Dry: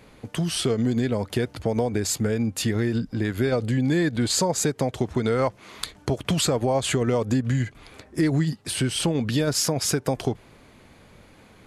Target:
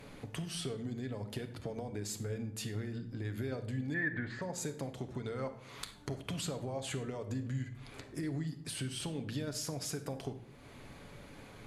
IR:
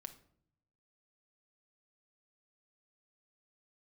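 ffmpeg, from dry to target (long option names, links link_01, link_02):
-filter_complex "[0:a]acompressor=threshold=-44dB:ratio=2.5,asettb=1/sr,asplit=3[link_01][link_02][link_03];[link_01]atrim=end=3.944[link_04];[link_02]atrim=start=3.94:end=4.42,asetpts=PTS-STARTPTS,afade=type=in:duration=0.004:curve=qsin,afade=type=out:start_time=0.476:duration=0.004:curve=qsin,lowpass=frequency=1800:width_type=q:width=7.3[link_05];[link_03]atrim=start=4.416[link_06];[link_04][link_05]acrossfade=duration=0.004:curve1=hsin:curve2=qsin[link_07];[link_07][link_06]acrossfade=duration=0.004:curve1=qsin:curve2=hsin[link_08];[1:a]atrim=start_sample=2205,asetrate=33957,aresample=44100[link_09];[link_08][link_09]afir=irnorm=-1:irlink=0,volume=3dB"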